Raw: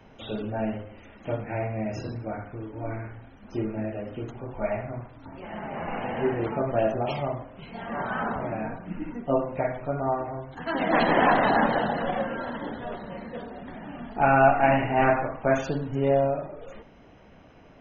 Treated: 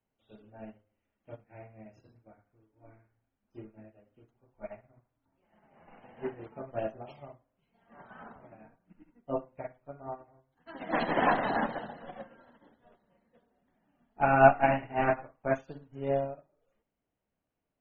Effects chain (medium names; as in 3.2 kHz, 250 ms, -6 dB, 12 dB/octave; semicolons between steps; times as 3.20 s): upward expansion 2.5:1, over -38 dBFS; trim +1.5 dB